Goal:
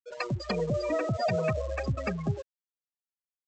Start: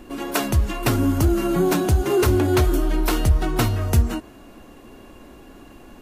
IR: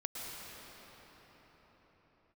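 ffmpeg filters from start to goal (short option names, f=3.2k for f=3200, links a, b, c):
-af "asetrate=76440,aresample=44100,afftfilt=real='re*gte(hypot(re,im),0.141)':imag='im*gte(hypot(re,im),0.141)':win_size=1024:overlap=0.75,highpass=f=120:p=1,aresample=16000,aeval=exprs='sgn(val(0))*max(abs(val(0))-0.00562,0)':c=same,aresample=44100,crystalizer=i=4:c=0,volume=-9dB"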